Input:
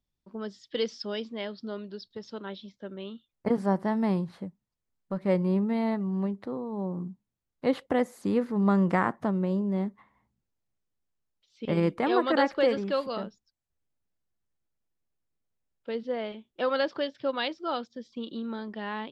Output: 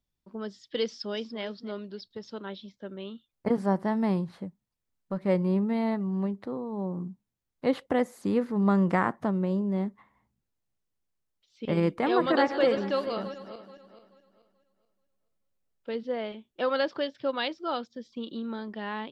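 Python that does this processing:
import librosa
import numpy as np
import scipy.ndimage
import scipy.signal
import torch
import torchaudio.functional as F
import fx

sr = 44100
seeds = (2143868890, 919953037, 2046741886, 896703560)

y = fx.echo_throw(x, sr, start_s=0.85, length_s=0.57, ms=290, feedback_pct=20, wet_db=-14.0)
y = fx.reverse_delay_fb(y, sr, ms=216, feedback_pct=53, wet_db=-12, at=(11.83, 15.96))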